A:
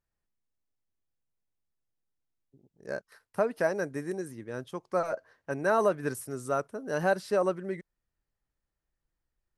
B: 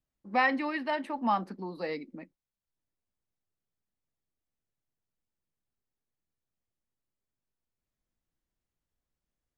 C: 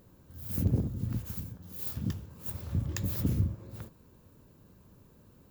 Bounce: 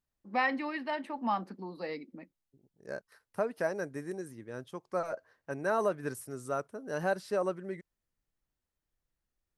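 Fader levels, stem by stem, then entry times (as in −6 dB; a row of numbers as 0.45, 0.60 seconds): −4.5 dB, −3.5 dB, muted; 0.00 s, 0.00 s, muted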